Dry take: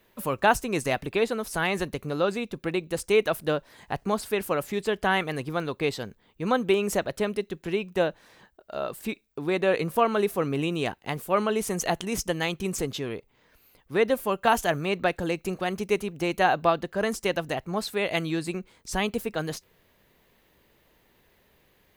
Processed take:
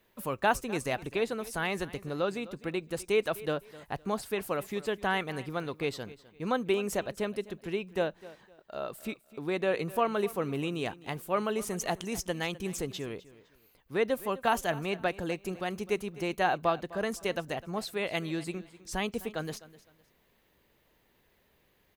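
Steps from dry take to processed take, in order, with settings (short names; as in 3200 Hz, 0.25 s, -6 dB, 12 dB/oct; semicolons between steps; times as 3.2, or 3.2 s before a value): feedback echo 0.255 s, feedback 27%, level -18.5 dB; gain -5.5 dB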